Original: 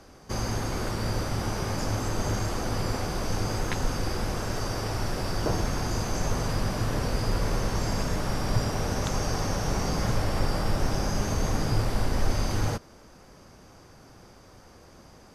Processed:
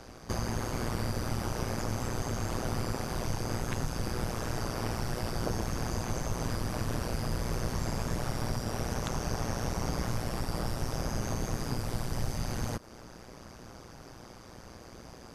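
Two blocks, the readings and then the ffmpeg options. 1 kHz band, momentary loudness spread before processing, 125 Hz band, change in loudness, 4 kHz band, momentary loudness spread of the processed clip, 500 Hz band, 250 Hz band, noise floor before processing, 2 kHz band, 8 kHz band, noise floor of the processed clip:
−5.0 dB, 3 LU, −5.0 dB, −5.0 dB, −6.0 dB, 16 LU, −5.0 dB, −4.0 dB, −52 dBFS, −5.5 dB, −4.5 dB, −50 dBFS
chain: -filter_complex "[0:a]acrossover=split=3400|7000[link_01][link_02][link_03];[link_01]acompressor=threshold=-33dB:ratio=4[link_04];[link_02]acompressor=threshold=-55dB:ratio=4[link_05];[link_03]acompressor=threshold=-51dB:ratio=4[link_06];[link_04][link_05][link_06]amix=inputs=3:normalize=0,tremolo=f=120:d=0.919,volume=6.5dB"

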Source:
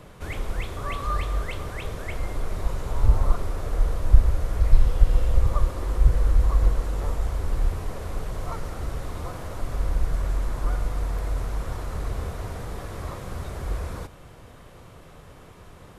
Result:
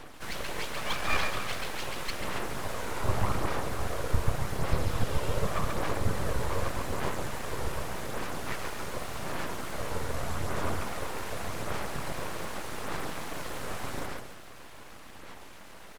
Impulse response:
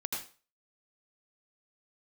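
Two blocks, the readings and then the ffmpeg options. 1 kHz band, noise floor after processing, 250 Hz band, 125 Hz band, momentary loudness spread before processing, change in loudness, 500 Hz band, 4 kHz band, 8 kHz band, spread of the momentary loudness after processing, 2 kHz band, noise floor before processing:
+1.5 dB, −46 dBFS, +0.5 dB, −8.5 dB, 12 LU, −6.5 dB, +0.5 dB, +6.0 dB, can't be measured, 9 LU, +4.5 dB, −47 dBFS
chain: -filter_complex "[0:a]highpass=frequency=260:poles=1,aecho=1:1:138|276|414|552|690|828:0.668|0.314|0.148|0.0694|0.0326|0.0153,asplit=2[link_01][link_02];[link_02]acrusher=bits=5:mode=log:mix=0:aa=0.000001,volume=-11dB[link_03];[link_01][link_03]amix=inputs=2:normalize=0,aphaser=in_gain=1:out_gain=1:delay=2.2:decay=0.37:speed=0.85:type=sinusoidal,aeval=exprs='abs(val(0))':channel_layout=same"

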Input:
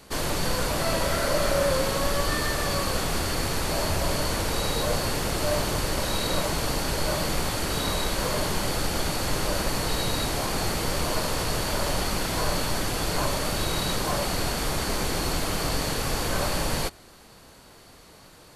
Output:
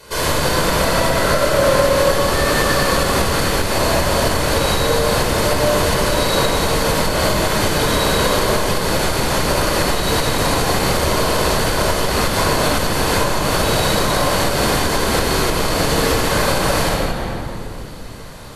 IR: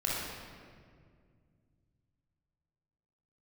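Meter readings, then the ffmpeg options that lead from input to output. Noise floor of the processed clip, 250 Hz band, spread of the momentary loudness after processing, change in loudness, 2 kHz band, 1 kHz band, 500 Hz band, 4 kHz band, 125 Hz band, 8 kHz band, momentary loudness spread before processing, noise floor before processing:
−28 dBFS, +10.0 dB, 3 LU, +9.5 dB, +11.0 dB, +11.0 dB, +11.5 dB, +8.5 dB, +9.0 dB, +8.0 dB, 2 LU, −50 dBFS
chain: -filter_complex "[1:a]atrim=start_sample=2205,asetrate=33075,aresample=44100[link_01];[0:a][link_01]afir=irnorm=-1:irlink=0,acompressor=threshold=-12dB:ratio=6,lowshelf=frequency=120:gain=-10.5,volume=4.5dB"

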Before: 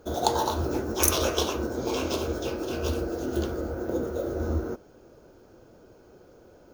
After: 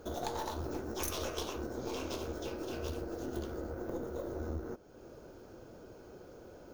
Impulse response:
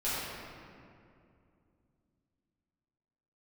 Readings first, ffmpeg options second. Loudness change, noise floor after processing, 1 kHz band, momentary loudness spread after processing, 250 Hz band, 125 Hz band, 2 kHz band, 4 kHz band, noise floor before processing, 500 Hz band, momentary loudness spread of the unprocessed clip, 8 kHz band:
−11.5 dB, −54 dBFS, −12.0 dB, 15 LU, −10.0 dB, −10.5 dB, −10.5 dB, −12.0 dB, −54 dBFS, −10.5 dB, 8 LU, −14.5 dB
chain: -af "aeval=exprs='(tanh(10*val(0)+0.6)-tanh(0.6))/10':channel_layout=same,acompressor=threshold=-49dB:ratio=2,volume=4dB"

